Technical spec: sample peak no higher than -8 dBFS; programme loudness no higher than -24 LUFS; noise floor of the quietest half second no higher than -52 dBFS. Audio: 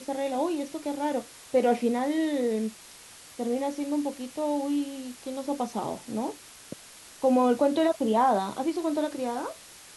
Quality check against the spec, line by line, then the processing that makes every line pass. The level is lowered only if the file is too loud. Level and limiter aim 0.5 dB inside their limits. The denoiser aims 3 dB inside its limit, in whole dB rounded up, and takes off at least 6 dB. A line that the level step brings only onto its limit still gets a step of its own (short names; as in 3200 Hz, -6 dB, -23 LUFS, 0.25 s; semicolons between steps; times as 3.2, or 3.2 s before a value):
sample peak -12.5 dBFS: OK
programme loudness -28.0 LUFS: OK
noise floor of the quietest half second -49 dBFS: fail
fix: denoiser 6 dB, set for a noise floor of -49 dBFS